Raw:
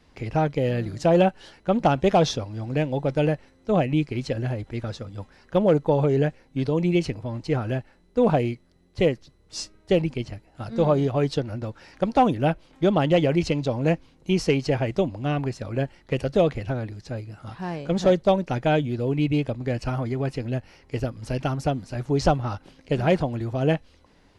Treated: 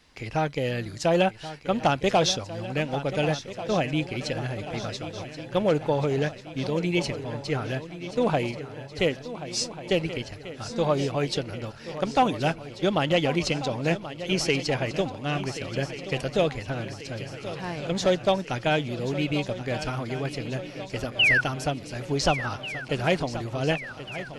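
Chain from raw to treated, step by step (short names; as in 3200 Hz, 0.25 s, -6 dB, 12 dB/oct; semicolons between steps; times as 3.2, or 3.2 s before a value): painted sound fall, 21.19–21.41, 1400–3100 Hz -22 dBFS; tilt shelf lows -5.5 dB, about 1200 Hz; swung echo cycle 1.44 s, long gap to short 3:1, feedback 56%, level -13 dB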